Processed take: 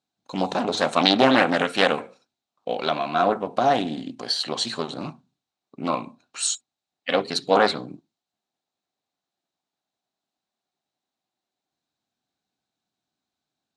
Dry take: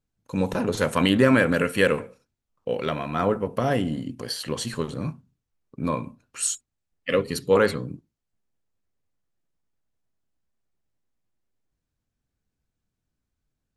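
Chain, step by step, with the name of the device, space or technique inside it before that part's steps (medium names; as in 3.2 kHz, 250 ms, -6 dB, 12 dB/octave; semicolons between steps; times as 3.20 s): full-range speaker at full volume (loudspeaker Doppler distortion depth 0.55 ms; cabinet simulation 260–8100 Hz, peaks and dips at 480 Hz -6 dB, 750 Hz +9 dB, 1.9 kHz -3 dB, 3.9 kHz +10 dB); trim +2.5 dB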